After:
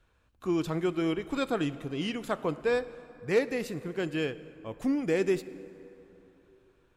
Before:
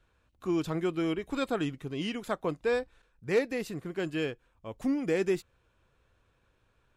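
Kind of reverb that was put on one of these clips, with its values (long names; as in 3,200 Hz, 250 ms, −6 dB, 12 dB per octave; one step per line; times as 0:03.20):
dense smooth reverb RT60 3.2 s, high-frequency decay 0.55×, DRR 14.5 dB
level +1 dB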